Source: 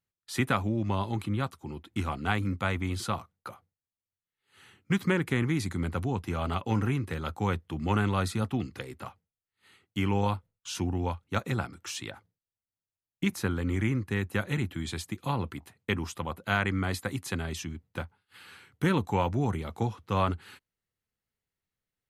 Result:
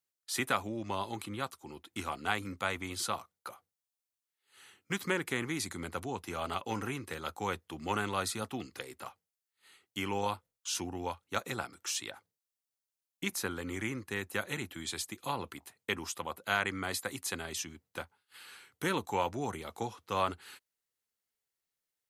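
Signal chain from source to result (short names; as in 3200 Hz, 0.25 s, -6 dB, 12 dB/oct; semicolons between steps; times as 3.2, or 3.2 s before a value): tone controls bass -13 dB, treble +7 dB; gain -2.5 dB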